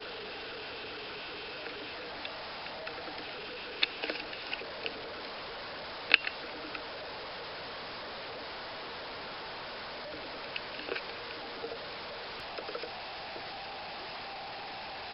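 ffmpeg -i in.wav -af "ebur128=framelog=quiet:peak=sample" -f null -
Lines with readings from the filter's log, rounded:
Integrated loudness:
  I:         -37.7 LUFS
  Threshold: -47.7 LUFS
Loudness range:
  LRA:         7.3 LU
  Threshold: -57.3 LUFS
  LRA low:   -40.7 LUFS
  LRA high:  -33.4 LUFS
Sample peak:
  Peak:       -2.6 dBFS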